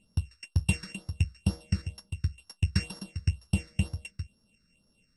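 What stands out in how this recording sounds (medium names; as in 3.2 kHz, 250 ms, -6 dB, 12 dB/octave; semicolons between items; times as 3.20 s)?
a buzz of ramps at a fixed pitch in blocks of 16 samples; phasing stages 6, 2.1 Hz, lowest notch 770–2600 Hz; AAC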